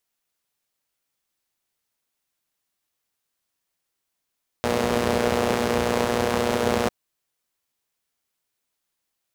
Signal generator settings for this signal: four-cylinder engine model, steady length 2.25 s, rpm 3600, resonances 88/210/440 Hz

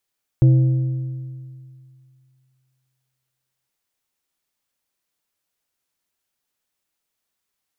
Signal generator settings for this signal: metal hit plate, length 3.27 s, lowest mode 130 Hz, decay 2.35 s, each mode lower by 12 dB, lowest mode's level -8 dB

